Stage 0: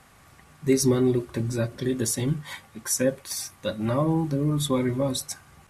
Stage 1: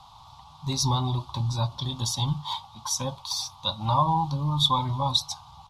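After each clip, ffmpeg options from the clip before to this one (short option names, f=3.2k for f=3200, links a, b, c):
-af "firequalizer=gain_entry='entry(130,0);entry(190,-10);entry(410,-23);entry(900,15);entry(1700,-24);entry(3500,10);entry(8200,-13)':delay=0.05:min_phase=1,volume=2.5dB"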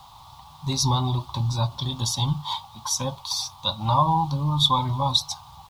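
-af "acrusher=bits=9:mix=0:aa=0.000001,volume=2.5dB"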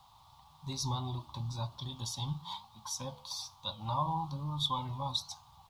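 -af "flanger=delay=8.3:depth=5.9:regen=88:speed=1.1:shape=triangular,volume=-8.5dB"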